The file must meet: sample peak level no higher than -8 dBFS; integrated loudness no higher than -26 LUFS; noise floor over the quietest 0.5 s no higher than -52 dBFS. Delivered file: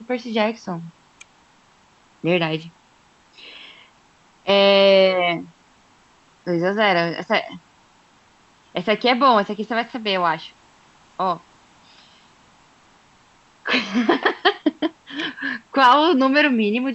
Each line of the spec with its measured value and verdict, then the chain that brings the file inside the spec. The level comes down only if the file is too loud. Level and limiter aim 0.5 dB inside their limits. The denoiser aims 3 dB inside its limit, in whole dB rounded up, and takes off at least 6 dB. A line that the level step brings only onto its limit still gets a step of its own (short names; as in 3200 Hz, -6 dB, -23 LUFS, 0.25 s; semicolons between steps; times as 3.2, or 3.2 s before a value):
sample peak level -3.0 dBFS: fail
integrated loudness -19.0 LUFS: fail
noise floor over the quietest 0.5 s -55 dBFS: OK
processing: gain -7.5 dB